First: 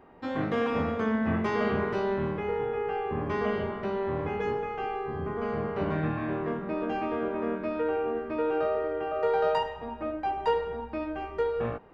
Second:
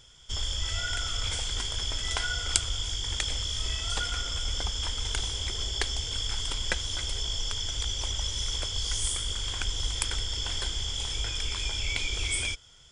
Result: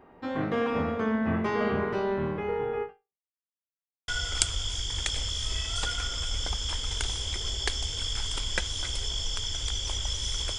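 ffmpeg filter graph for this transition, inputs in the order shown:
-filter_complex "[0:a]apad=whole_dur=10.58,atrim=end=10.58,asplit=2[a][b];[a]atrim=end=3.23,asetpts=PTS-STARTPTS,afade=t=out:st=2.83:d=0.4:c=exp[c];[b]atrim=start=3.23:end=4.08,asetpts=PTS-STARTPTS,volume=0[d];[1:a]atrim=start=2.22:end=8.72,asetpts=PTS-STARTPTS,afade=t=in:d=0.004:c=hsin[e];[c][d][e]concat=n=3:v=0:a=1"

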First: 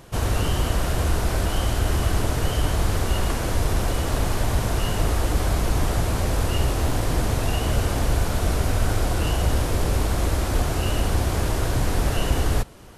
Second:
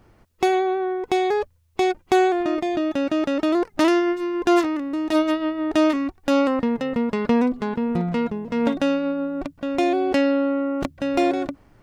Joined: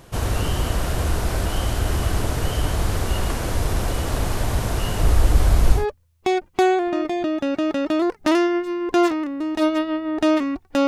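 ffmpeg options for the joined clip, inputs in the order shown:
-filter_complex "[0:a]asettb=1/sr,asplit=3[a][b][c];[a]atrim=end=5.024[d];[b]atrim=start=5.02:end=5.86,asetpts=PTS-STARTPTS,afade=t=in:d=0.004:c=qsin,afade=t=out:st=0.836:d=0.004:c=qsin,lowshelf=f=63:g=11.5[e];[c]atrim=start=5.856[f];[d][e]acrossfade=d=0.004:c1=hsin:c2=qsin[g];[g][f]acrossfade=d=0.004:c1=qsin:c2=hsin,apad=whole_dur=10.87,atrim=end=10.87,atrim=end=5.86,asetpts=PTS-STARTPTS[h];[1:a]atrim=start=1.25:end=6.4,asetpts=PTS-STARTPTS[i];[h][i]acrossfade=d=0.14:c1=tri:c2=tri"

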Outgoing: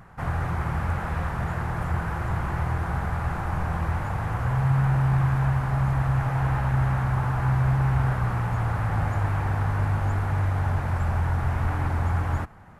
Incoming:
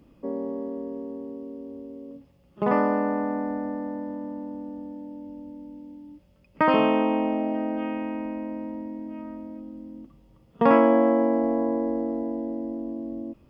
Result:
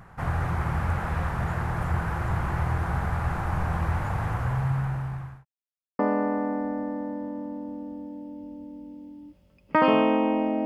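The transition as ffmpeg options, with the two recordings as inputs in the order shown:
-filter_complex "[0:a]apad=whole_dur=10.65,atrim=end=10.65,asplit=2[a][b];[a]atrim=end=5.45,asetpts=PTS-STARTPTS,afade=t=out:st=4.24:d=1.21[c];[b]atrim=start=5.45:end=5.99,asetpts=PTS-STARTPTS,volume=0[d];[1:a]atrim=start=2.85:end=7.51,asetpts=PTS-STARTPTS,afade=t=in:d=0.004:c=hsin[e];[c][d][e]concat=n=3:v=0:a=1"

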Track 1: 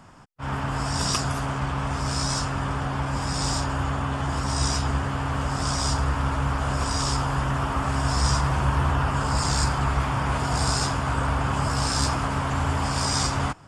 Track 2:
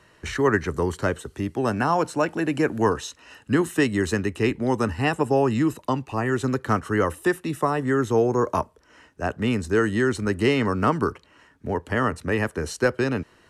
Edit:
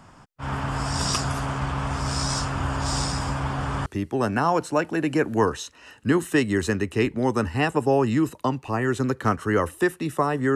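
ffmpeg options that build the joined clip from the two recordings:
-filter_complex "[0:a]apad=whole_dur=10.55,atrim=end=10.55,asplit=2[a][b];[a]atrim=end=2.602[c];[b]atrim=start=2.598:end=3.862,asetpts=PTS-STARTPTS,areverse[d];[1:a]atrim=start=1.298:end=7.99[e];[c][d]acrossfade=d=0.004:c1=hsin:c2=hsin[f];[f][e]acrossfade=d=0.004:c1=hsin:c2=hsin"

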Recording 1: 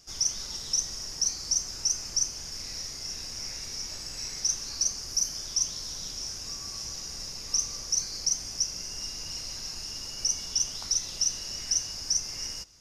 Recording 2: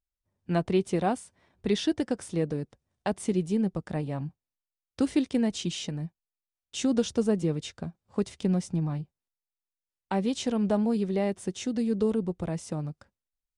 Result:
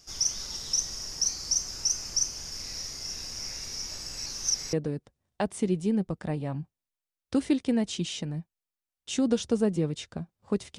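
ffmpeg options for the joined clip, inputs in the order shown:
-filter_complex "[0:a]apad=whole_dur=10.78,atrim=end=10.78,asplit=2[a][b];[a]atrim=end=4.262[c];[b]atrim=start=4.258:end=4.732,asetpts=PTS-STARTPTS,areverse[d];[1:a]atrim=start=2.388:end=8.44[e];[c][d]acrossfade=d=0.004:c1=hsin:c2=hsin[f];[f][e]acrossfade=d=0.004:c1=hsin:c2=hsin"

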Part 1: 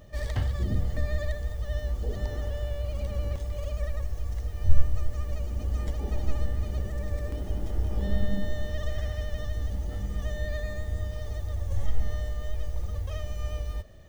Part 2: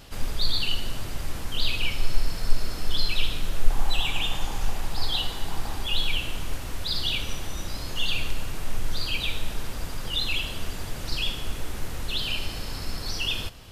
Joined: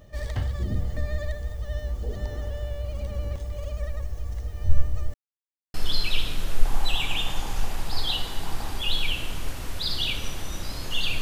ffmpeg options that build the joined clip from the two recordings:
-filter_complex "[0:a]apad=whole_dur=11.21,atrim=end=11.21,asplit=2[a][b];[a]atrim=end=5.14,asetpts=PTS-STARTPTS,afade=t=out:st=5.136:d=0.004:c=hsin[c];[b]atrim=start=5.14:end=5.74,asetpts=PTS-STARTPTS,volume=0[d];[1:a]atrim=start=2.79:end=8.26,asetpts=PTS-STARTPTS,afade=t=in:d=0.004:c=hsin[e];[c][d][e]concat=n=3:v=0:a=1"

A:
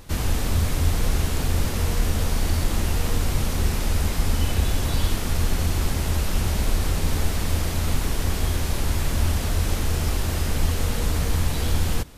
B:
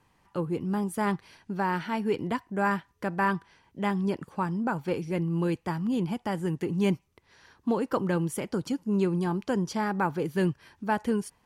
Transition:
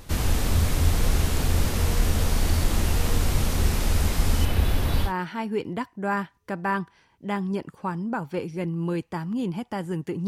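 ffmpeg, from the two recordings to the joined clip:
-filter_complex "[0:a]asettb=1/sr,asplit=3[a][b][c];[a]atrim=end=4.454[d];[b]atrim=start=4.45:end=5.13,asetpts=PTS-STARTPTS,afade=t=in:d=0.004:c=qsin,afade=t=out:st=0.676:d=0.004:c=qsin,equalizer=f=7.2k:t=o:w=1.1:g=-9.5[e];[c]atrim=start=5.126[f];[d][e]acrossfade=d=0.004:c1=hsin:c2=qsin[g];[g][f]acrossfade=d=0.004:c1=qsin:c2=hsin,apad=whole_dur=10.27,atrim=end=10.27,atrim=end=5.13,asetpts=PTS-STARTPTS[h];[1:a]atrim=start=1.55:end=6.81,asetpts=PTS-STARTPTS[i];[h][i]acrossfade=d=0.12:c1=tri:c2=tri"

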